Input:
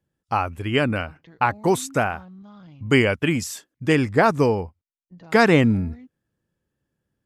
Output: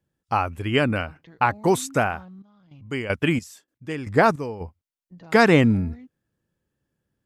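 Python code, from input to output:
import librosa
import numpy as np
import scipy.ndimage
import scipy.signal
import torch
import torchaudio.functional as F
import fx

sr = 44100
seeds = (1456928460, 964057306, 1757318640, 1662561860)

y = fx.step_gate(x, sr, bpm=155, pattern='..xxx...x.', floor_db=-12.0, edge_ms=4.5, at=(2.28, 4.6), fade=0.02)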